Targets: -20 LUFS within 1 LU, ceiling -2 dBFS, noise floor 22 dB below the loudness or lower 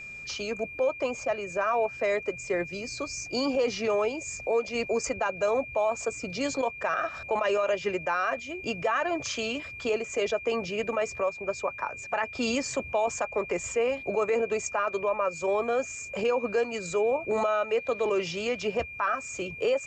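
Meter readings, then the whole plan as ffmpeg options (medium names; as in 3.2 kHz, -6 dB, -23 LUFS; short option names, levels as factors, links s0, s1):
steady tone 2.4 kHz; tone level -39 dBFS; loudness -29.0 LUFS; peak level -17.0 dBFS; loudness target -20.0 LUFS
-> -af "bandreject=f=2400:w=30"
-af "volume=2.82"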